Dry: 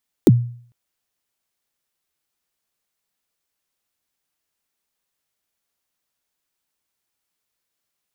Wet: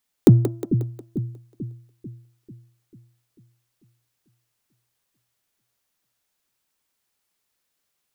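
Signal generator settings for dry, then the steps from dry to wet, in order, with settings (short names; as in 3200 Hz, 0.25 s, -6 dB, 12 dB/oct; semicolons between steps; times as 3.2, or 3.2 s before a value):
kick drum length 0.45 s, from 430 Hz, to 120 Hz, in 34 ms, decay 0.52 s, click on, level -4 dB
de-hum 336.8 Hz, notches 4; in parallel at -10 dB: soft clip -14 dBFS; on the sum: split-band echo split 330 Hz, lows 0.443 s, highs 0.18 s, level -8.5 dB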